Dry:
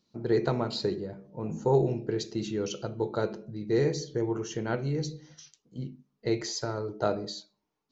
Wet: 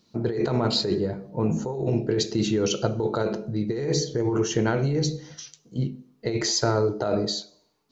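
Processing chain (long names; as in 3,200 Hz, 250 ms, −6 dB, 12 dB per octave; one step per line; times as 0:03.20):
compressor whose output falls as the input rises −31 dBFS, ratio −1
on a send: parametric band 590 Hz +13 dB 1 octave + convolution reverb RT60 0.70 s, pre-delay 3 ms, DRR 16 dB
on the sum: level +7.5 dB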